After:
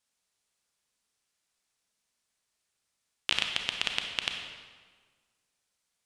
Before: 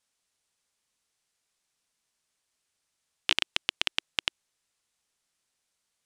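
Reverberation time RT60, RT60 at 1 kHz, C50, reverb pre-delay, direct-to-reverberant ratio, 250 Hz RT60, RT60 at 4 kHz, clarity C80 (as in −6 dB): 1.6 s, 1.5 s, 4.0 dB, 29 ms, 3.0 dB, 1.6 s, 1.2 s, 6.0 dB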